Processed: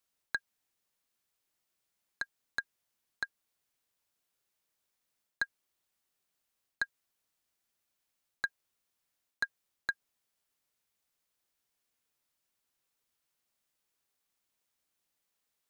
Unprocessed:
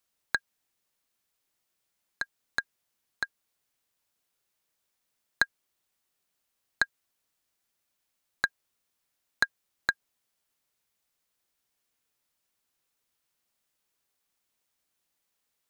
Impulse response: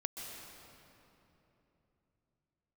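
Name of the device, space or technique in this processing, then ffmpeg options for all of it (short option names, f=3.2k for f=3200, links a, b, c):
compression on the reversed sound: -af "areverse,acompressor=threshold=-26dB:ratio=6,areverse,volume=-3dB"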